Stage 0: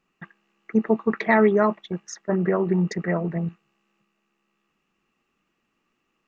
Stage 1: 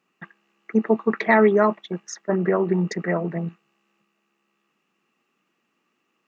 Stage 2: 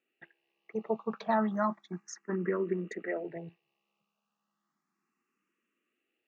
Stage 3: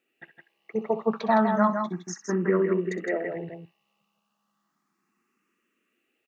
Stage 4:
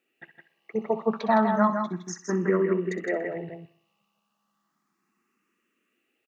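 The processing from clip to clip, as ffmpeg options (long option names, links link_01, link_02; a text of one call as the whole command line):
ffmpeg -i in.wav -af "highpass=180,volume=2dB" out.wav
ffmpeg -i in.wav -filter_complex "[0:a]asplit=2[link_01][link_02];[link_02]afreqshift=0.33[link_03];[link_01][link_03]amix=inputs=2:normalize=1,volume=-8.5dB" out.wav
ffmpeg -i in.wav -af "aecho=1:1:63|162:0.2|0.501,volume=6.5dB" out.wav
ffmpeg -i in.wav -af "aecho=1:1:62|124|186|248|310:0.119|0.0654|0.036|0.0198|0.0109" out.wav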